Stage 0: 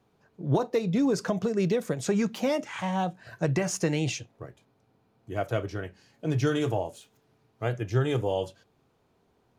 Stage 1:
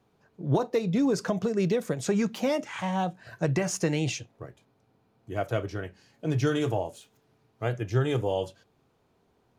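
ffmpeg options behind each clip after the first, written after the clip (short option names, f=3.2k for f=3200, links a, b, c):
-af anull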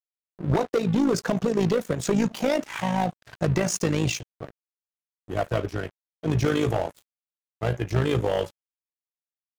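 -af "aeval=exprs='0.2*(cos(1*acos(clip(val(0)/0.2,-1,1)))-cos(1*PI/2))+0.0398*(cos(5*acos(clip(val(0)/0.2,-1,1)))-cos(5*PI/2))':c=same,aeval=exprs='sgn(val(0))*max(abs(val(0))-0.0112,0)':c=same,tremolo=f=54:d=0.667,volume=4dB"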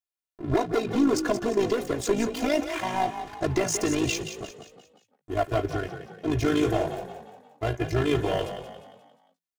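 -filter_complex "[0:a]aecho=1:1:2.9:0.93,asplit=2[a][b];[b]asplit=5[c][d][e][f][g];[c]adelay=176,afreqshift=34,volume=-9.5dB[h];[d]adelay=352,afreqshift=68,volume=-16.4dB[i];[e]adelay=528,afreqshift=102,volume=-23.4dB[j];[f]adelay=704,afreqshift=136,volume=-30.3dB[k];[g]adelay=880,afreqshift=170,volume=-37.2dB[l];[h][i][j][k][l]amix=inputs=5:normalize=0[m];[a][m]amix=inputs=2:normalize=0,volume=-3dB"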